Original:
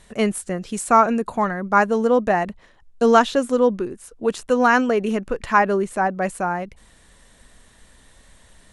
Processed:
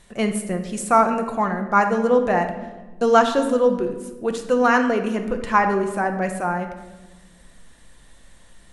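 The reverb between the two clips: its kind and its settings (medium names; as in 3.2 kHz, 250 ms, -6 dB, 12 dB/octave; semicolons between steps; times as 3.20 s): simulated room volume 800 m³, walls mixed, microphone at 0.82 m; trim -2 dB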